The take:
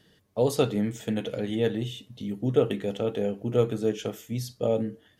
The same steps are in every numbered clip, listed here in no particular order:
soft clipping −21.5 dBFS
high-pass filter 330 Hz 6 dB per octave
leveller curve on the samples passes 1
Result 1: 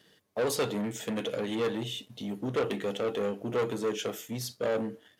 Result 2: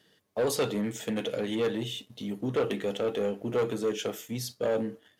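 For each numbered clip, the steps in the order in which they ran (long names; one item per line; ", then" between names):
soft clipping, then leveller curve on the samples, then high-pass filter
soft clipping, then high-pass filter, then leveller curve on the samples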